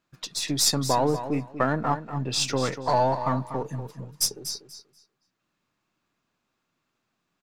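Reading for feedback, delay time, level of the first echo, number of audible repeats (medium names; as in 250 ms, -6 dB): 19%, 241 ms, -11.0 dB, 2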